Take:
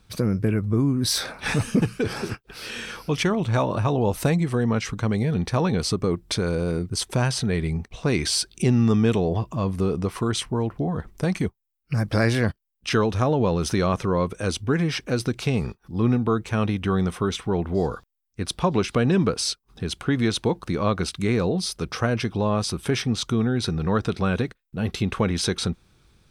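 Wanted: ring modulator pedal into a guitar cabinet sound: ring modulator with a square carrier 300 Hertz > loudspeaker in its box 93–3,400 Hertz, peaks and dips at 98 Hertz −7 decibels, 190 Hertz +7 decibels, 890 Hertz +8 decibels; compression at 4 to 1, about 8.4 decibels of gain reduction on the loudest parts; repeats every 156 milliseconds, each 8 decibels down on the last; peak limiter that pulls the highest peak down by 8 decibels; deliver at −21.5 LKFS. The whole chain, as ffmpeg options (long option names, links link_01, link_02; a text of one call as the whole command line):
ffmpeg -i in.wav -af "acompressor=threshold=-26dB:ratio=4,alimiter=limit=-22dB:level=0:latency=1,aecho=1:1:156|312|468|624|780:0.398|0.159|0.0637|0.0255|0.0102,aeval=exprs='val(0)*sgn(sin(2*PI*300*n/s))':channel_layout=same,highpass=93,equalizer=frequency=98:width_type=q:width=4:gain=-7,equalizer=frequency=190:width_type=q:width=4:gain=7,equalizer=frequency=890:width_type=q:width=4:gain=8,lowpass=frequency=3400:width=0.5412,lowpass=frequency=3400:width=1.3066,volume=8.5dB" out.wav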